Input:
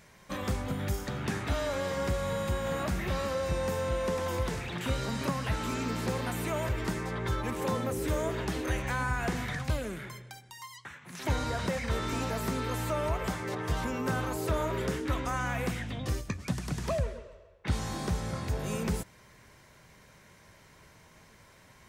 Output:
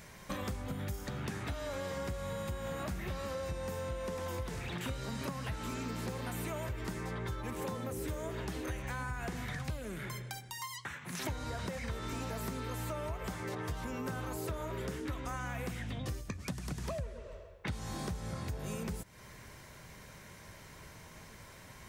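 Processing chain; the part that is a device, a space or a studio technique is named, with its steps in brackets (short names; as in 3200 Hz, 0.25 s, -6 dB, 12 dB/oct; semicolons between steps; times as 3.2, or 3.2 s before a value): ASMR close-microphone chain (low shelf 130 Hz +3.5 dB; compressor, threshold -40 dBFS, peak gain reduction 17.5 dB; high shelf 9600 Hz +5 dB); gain +3.5 dB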